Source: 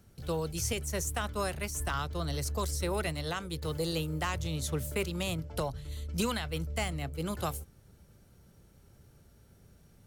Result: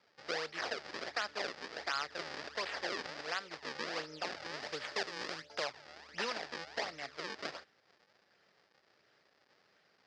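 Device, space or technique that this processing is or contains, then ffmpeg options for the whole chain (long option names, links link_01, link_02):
circuit-bent sampling toy: -filter_complex "[0:a]acrusher=samples=37:mix=1:aa=0.000001:lfo=1:lforange=59.2:lforate=1.4,highpass=570,equalizer=frequency=990:width_type=q:width=4:gain=-4,equalizer=frequency=1800:width_type=q:width=4:gain=6,equalizer=frequency=4900:width_type=q:width=4:gain=10,lowpass=frequency=5600:width=0.5412,lowpass=frequency=5600:width=1.3066,asettb=1/sr,asplit=3[link_01][link_02][link_03];[link_01]atrim=end=4.604[link_04];[link_02]atrim=start=4.6:end=5.64,asetpts=PTS-STARTPTS,afade=type=in:duration=0.004:curve=qsin,afade=type=out:start_time=1.036:duration=0.004:curve=qsin,highshelf=frequency=6100:gain=5.5[link_05];[link_03]atrim=start=5.636[link_06];[link_04][link_05]acrossfade=duration=0.004:curve1=hsin:curve2=qsin[link_07];[link_07][link_06]acrossfade=duration=0.004:curve1=qsin:curve2=hsin,volume=-1.5dB"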